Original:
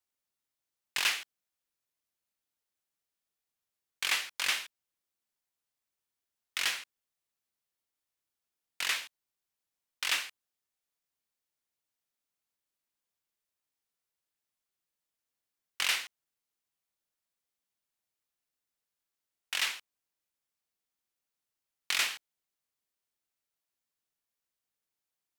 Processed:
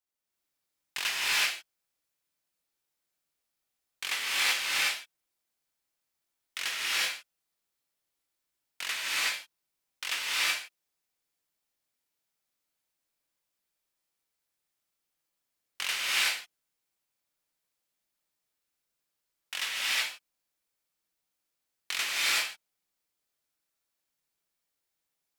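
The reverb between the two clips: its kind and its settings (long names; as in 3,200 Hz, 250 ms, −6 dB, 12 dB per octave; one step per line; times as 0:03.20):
reverb whose tail is shaped and stops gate 400 ms rising, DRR −7.5 dB
level −3.5 dB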